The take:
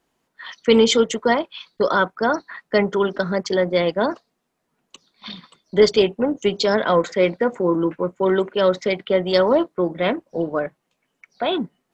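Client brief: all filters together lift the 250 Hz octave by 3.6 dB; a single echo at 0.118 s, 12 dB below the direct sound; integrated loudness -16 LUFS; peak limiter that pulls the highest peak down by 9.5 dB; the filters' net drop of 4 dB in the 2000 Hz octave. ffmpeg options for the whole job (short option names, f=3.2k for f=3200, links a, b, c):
-af "equalizer=f=250:t=o:g=5,equalizer=f=2k:t=o:g=-5.5,alimiter=limit=-11dB:level=0:latency=1,aecho=1:1:118:0.251,volume=5.5dB"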